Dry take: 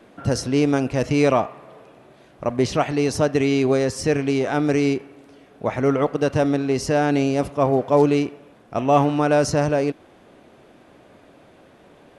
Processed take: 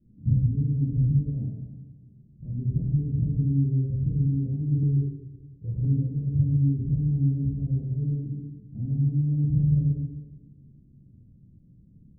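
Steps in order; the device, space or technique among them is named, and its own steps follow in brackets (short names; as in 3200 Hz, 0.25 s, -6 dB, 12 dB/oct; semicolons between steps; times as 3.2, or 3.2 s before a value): club heard from the street (limiter -14 dBFS, peak gain reduction 10 dB; LPF 170 Hz 24 dB/oct; reverb RT60 1.1 s, pre-delay 14 ms, DRR -5 dB); 4.83–5.85 comb 2.2 ms, depth 96%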